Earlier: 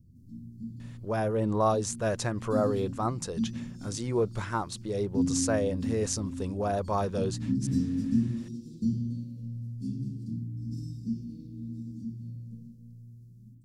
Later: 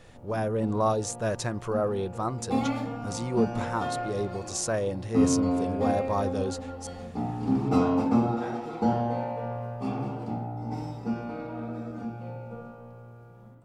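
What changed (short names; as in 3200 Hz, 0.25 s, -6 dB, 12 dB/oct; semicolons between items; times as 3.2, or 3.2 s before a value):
speech: entry -0.80 s; background: remove inverse Chebyshev band-stop 790–1600 Hz, stop band 80 dB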